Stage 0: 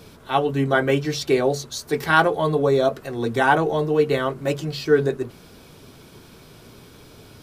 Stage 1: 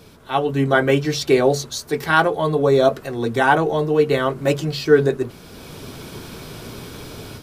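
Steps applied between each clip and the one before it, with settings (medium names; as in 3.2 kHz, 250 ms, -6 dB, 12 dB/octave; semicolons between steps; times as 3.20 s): level rider gain up to 12 dB; trim -1 dB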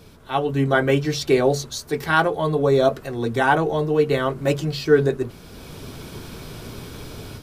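bass shelf 88 Hz +7.5 dB; trim -2.5 dB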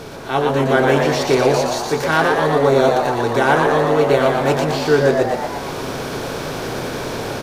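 spectral levelling over time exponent 0.6; frequency-shifting echo 118 ms, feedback 59%, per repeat +110 Hz, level -4 dB; trim -1 dB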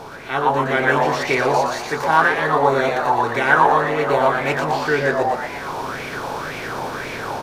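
sweeping bell 1.9 Hz 850–2300 Hz +15 dB; trim -6.5 dB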